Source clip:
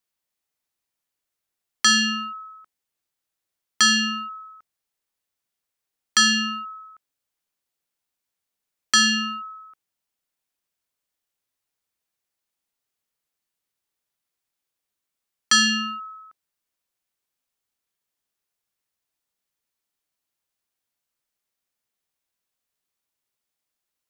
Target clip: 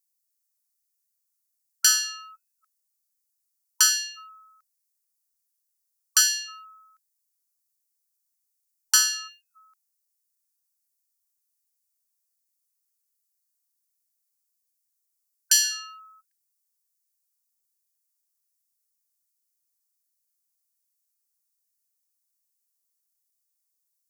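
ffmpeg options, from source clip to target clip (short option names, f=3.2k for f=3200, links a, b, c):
-af "aexciter=amount=5.5:drive=6.8:freq=4.6k,aeval=exprs='1.68*(cos(1*acos(clip(val(0)/1.68,-1,1)))-cos(1*PI/2))+0.473*(cos(2*acos(clip(val(0)/1.68,-1,1)))-cos(2*PI/2))+0.211*(cos(3*acos(clip(val(0)/1.68,-1,1)))-cos(3*PI/2))+0.0106*(cos(5*acos(clip(val(0)/1.68,-1,1)))-cos(5*PI/2))':c=same,afftfilt=real='re*gte(b*sr/1024,760*pow(1600/760,0.5+0.5*sin(2*PI*1.3*pts/sr)))':imag='im*gte(b*sr/1024,760*pow(1600/760,0.5+0.5*sin(2*PI*1.3*pts/sr)))':win_size=1024:overlap=0.75,volume=-9dB"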